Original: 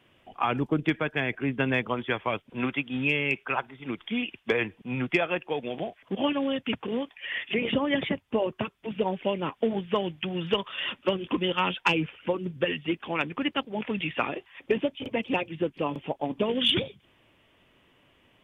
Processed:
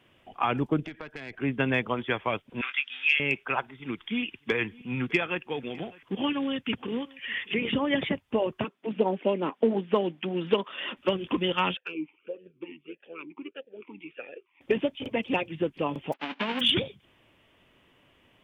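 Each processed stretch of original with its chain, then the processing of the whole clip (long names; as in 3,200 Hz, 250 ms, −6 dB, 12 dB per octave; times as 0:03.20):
0:00.85–0:01.39: downward compressor 12 to 1, threshold −31 dBFS + tube saturation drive 27 dB, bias 0.6
0:02.61–0:03.20: Chebyshev band-pass filter 1,500–5,400 Hz + high-shelf EQ 2,600 Hz +8 dB + double-tracking delay 21 ms −9 dB
0:03.71–0:07.79: parametric band 630 Hz −9.5 dB 0.6 octaves + single-tap delay 605 ms −23 dB
0:08.64–0:10.97: high-pass filter 220 Hz 24 dB per octave + spectral tilt −2.5 dB per octave + highs frequency-modulated by the lows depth 0.11 ms
0:11.77–0:14.61: amplitude modulation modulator 90 Hz, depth 25% + formant filter swept between two vowels e-u 1.6 Hz
0:16.12–0:16.59: spectral envelope flattened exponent 0.1 + elliptic band-pass filter 220–2,900 Hz, stop band 50 dB
whole clip: no processing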